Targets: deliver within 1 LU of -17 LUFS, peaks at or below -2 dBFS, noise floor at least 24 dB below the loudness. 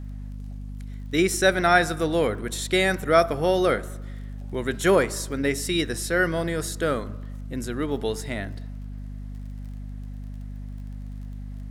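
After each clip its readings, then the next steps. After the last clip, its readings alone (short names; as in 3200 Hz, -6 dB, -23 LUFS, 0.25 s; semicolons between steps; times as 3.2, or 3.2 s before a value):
ticks 28/s; hum 50 Hz; harmonics up to 250 Hz; hum level -33 dBFS; loudness -24.0 LUFS; peak -5.5 dBFS; loudness target -17.0 LUFS
-> de-click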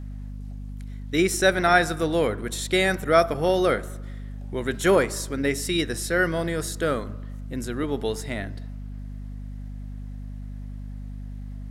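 ticks 0.085/s; hum 50 Hz; harmonics up to 250 Hz; hum level -33 dBFS
-> notches 50/100/150/200/250 Hz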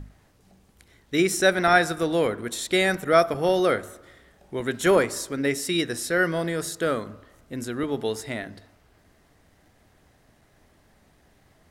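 hum none; loudness -24.0 LUFS; peak -5.5 dBFS; loudness target -17.0 LUFS
-> gain +7 dB; limiter -2 dBFS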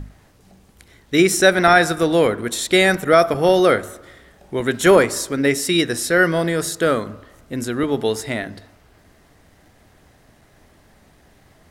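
loudness -17.5 LUFS; peak -2.0 dBFS; noise floor -54 dBFS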